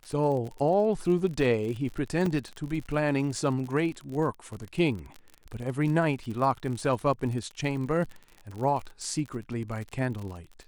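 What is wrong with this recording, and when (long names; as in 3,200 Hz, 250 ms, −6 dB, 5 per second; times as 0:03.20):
surface crackle 45 per second −34 dBFS
0:02.26: drop-out 3.3 ms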